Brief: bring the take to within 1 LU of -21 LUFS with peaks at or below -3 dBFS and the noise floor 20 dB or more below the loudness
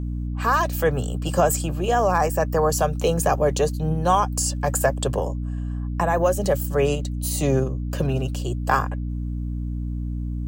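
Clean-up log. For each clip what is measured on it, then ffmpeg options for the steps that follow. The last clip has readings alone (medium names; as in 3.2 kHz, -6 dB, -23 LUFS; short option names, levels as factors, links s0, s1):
hum 60 Hz; highest harmonic 300 Hz; hum level -25 dBFS; loudness -23.0 LUFS; peak level -5.5 dBFS; loudness target -21.0 LUFS
-> -af "bandreject=f=60:t=h:w=4,bandreject=f=120:t=h:w=4,bandreject=f=180:t=h:w=4,bandreject=f=240:t=h:w=4,bandreject=f=300:t=h:w=4"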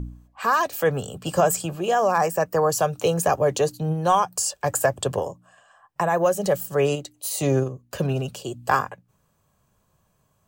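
hum not found; loudness -23.5 LUFS; peak level -6.5 dBFS; loudness target -21.0 LUFS
-> -af "volume=1.33"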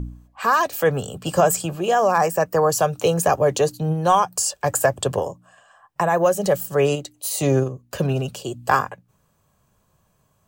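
loudness -21.0 LUFS; peak level -4.0 dBFS; noise floor -65 dBFS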